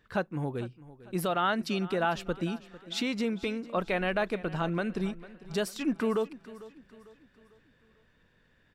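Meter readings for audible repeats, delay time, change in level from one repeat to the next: 3, 449 ms, -7.5 dB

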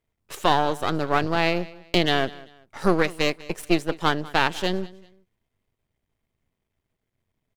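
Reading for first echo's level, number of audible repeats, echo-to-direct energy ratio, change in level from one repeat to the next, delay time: -20.5 dB, 2, -20.0 dB, -10.5 dB, 194 ms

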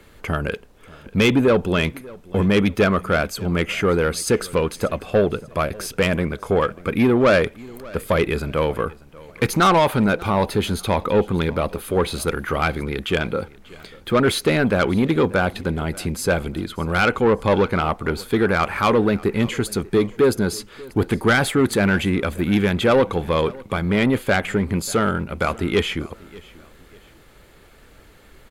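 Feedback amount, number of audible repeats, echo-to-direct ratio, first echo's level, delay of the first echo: 35%, 2, -21.5 dB, -22.0 dB, 590 ms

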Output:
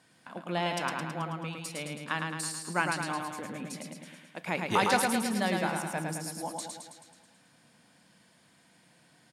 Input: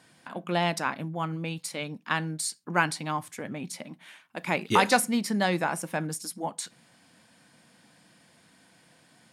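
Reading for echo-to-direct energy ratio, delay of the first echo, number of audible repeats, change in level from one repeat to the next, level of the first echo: -2.0 dB, 108 ms, 7, -4.5 dB, -4.0 dB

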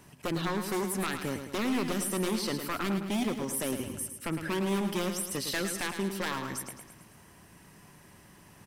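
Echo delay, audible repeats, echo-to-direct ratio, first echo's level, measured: 108 ms, 5, -6.5 dB, -8.0 dB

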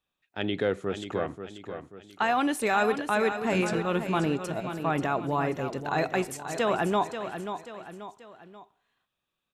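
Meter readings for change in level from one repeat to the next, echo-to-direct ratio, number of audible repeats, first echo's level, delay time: -7.0 dB, -8.0 dB, 3, -9.0 dB, 535 ms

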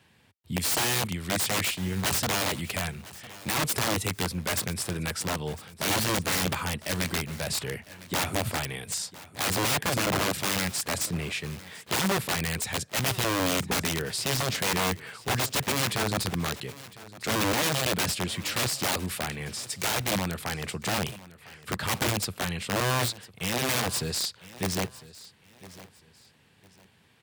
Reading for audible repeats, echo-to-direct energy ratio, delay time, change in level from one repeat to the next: 2, -18.0 dB, 1004 ms, -11.0 dB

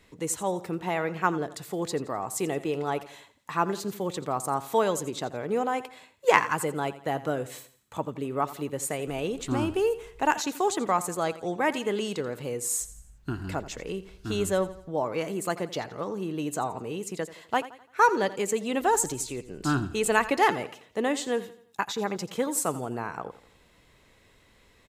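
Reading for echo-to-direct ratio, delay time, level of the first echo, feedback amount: -15.0 dB, 85 ms, -16.0 dB, 42%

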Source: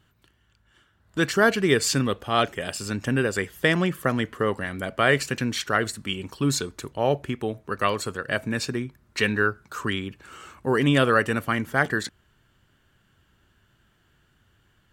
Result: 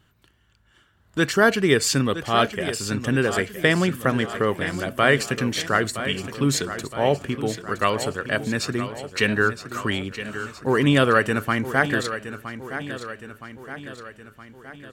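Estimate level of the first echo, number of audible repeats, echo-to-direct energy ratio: -11.5 dB, 5, -10.0 dB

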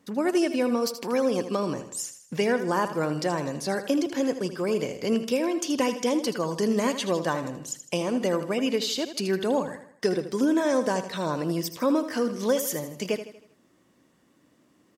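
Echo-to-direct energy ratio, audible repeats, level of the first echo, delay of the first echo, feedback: -10.0 dB, 4, -11.0 dB, 79 ms, 45%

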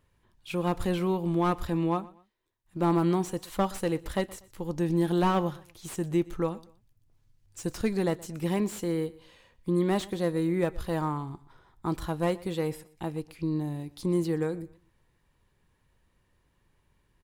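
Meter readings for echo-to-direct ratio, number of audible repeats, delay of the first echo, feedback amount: -20.5 dB, 2, 121 ms, 31%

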